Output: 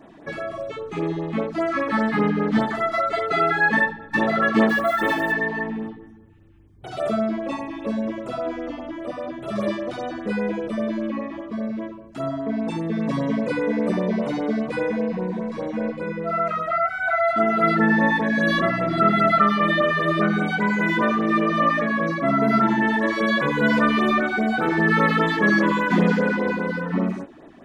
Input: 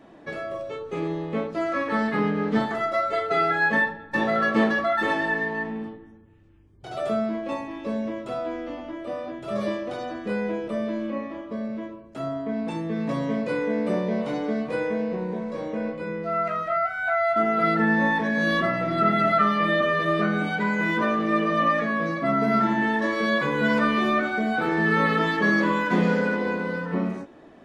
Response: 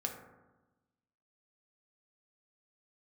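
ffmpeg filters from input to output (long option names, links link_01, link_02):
-filter_complex "[0:a]asettb=1/sr,asplit=3[link_01][link_02][link_03];[link_01]atrim=end=4.694[link_04];[link_02]atrim=start=4.69:end=5.32,asetpts=PTS-STARTPTS,afade=type=in:duration=0.004:curve=qsin,afade=type=out:start_time=0.626:duration=0.004:curve=qsin,acrusher=bits=7:mode=log:mix=0:aa=0.000001[link_05];[link_03]atrim=start=5.316[link_06];[link_04][link_05]acrossfade=duration=0.004:curve1=hsin:curve2=qsin[link_07];[link_07][link_06]acrossfade=duration=0.004:curve1=qsin:curve2=hsin,afftfilt=real='re*(1-between(b*sr/1024,430*pow(6100/430,0.5+0.5*sin(2*PI*5*pts/sr))/1.41,430*pow(6100/430,0.5+0.5*sin(2*PI*5*pts/sr))*1.41))':imag='im*(1-between(b*sr/1024,430*pow(6100/430,0.5+0.5*sin(2*PI*5*pts/sr))/1.41,430*pow(6100/430,0.5+0.5*sin(2*PI*5*pts/sr))*1.41))':win_size=1024:overlap=0.75,volume=3.5dB"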